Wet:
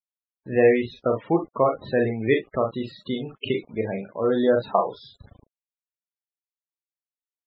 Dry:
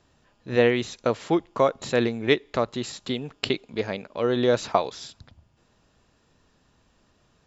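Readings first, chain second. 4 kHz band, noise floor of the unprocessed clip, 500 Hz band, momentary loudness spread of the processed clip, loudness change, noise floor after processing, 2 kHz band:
-6.5 dB, -65 dBFS, +2.0 dB, 11 LU, +1.0 dB, under -85 dBFS, -1.0 dB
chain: low-pass 3.7 kHz 12 dB/octave; bass shelf 87 Hz +2.5 dB; early reflections 36 ms -5 dB, 46 ms -12.5 dB, 61 ms -12.5 dB; word length cut 8-bit, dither none; loudest bins only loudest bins 32

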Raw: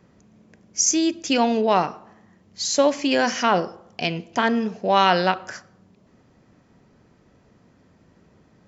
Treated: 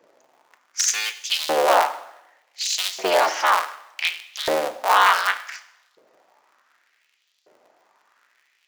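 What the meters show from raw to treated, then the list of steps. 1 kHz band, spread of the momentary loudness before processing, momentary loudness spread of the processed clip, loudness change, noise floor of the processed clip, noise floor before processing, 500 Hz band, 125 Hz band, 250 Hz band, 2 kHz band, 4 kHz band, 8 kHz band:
+2.0 dB, 11 LU, 13 LU, 0.0 dB, -67 dBFS, -58 dBFS, -2.0 dB, under -20 dB, -16.5 dB, +3.5 dB, +2.5 dB, no reading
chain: cycle switcher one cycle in 3, inverted; LFO high-pass saw up 0.67 Hz 460–4200 Hz; two-slope reverb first 0.83 s, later 2.2 s, from -28 dB, DRR 10.5 dB; trim -2 dB

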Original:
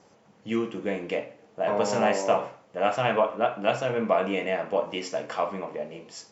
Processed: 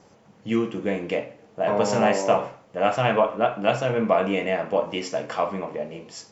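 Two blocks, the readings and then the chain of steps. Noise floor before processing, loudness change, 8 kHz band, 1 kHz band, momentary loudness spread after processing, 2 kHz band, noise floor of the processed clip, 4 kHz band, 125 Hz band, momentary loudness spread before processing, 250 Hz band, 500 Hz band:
-59 dBFS, +3.0 dB, no reading, +2.5 dB, 11 LU, +2.5 dB, -55 dBFS, +2.5 dB, +6.5 dB, 12 LU, +4.5 dB, +3.0 dB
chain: bass shelf 140 Hz +8 dB; trim +2.5 dB

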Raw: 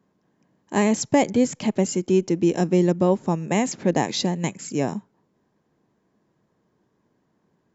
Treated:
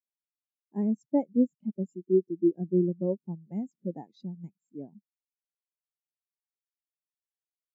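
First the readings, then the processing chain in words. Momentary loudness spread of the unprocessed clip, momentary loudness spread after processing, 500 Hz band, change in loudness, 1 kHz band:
7 LU, 19 LU, -8.0 dB, -7.0 dB, -19.5 dB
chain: spectral contrast expander 2.5:1; trim -6.5 dB

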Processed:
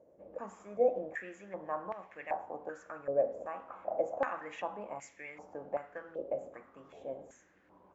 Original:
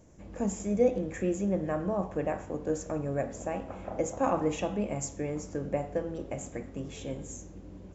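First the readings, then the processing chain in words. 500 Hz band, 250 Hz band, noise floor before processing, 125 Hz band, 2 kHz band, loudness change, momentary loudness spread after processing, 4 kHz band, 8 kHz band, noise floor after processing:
-4.0 dB, -17.5 dB, -48 dBFS, -22.0 dB, -0.5 dB, -5.5 dB, 16 LU, under -10 dB, no reading, -65 dBFS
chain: step-sequenced band-pass 2.6 Hz 550–2100 Hz; trim +5.5 dB

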